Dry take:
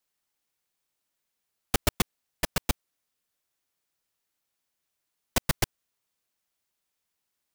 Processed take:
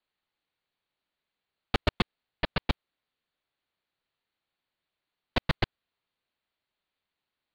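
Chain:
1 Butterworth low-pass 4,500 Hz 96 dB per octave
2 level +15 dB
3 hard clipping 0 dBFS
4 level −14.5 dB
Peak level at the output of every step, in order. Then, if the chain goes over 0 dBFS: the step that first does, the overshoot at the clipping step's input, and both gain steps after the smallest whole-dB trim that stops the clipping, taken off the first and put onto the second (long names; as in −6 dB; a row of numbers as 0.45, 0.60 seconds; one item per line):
−9.5, +5.5, 0.0, −14.5 dBFS
step 2, 5.5 dB
step 2 +9 dB, step 4 −8.5 dB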